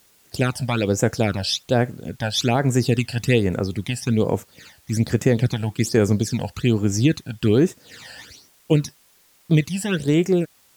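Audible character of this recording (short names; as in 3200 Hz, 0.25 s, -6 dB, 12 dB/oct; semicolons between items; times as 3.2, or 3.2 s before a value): phasing stages 12, 1.2 Hz, lowest notch 360–4400 Hz; a quantiser's noise floor 10-bit, dither triangular; AAC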